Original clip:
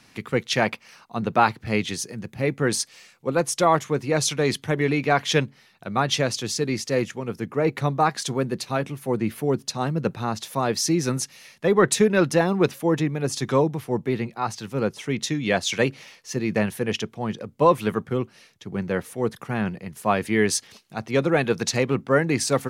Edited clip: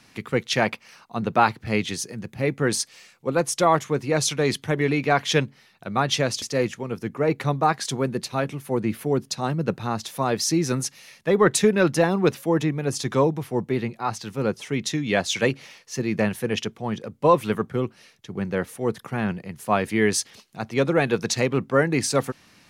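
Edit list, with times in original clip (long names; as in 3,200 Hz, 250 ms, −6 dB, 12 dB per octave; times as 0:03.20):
0:06.42–0:06.79: remove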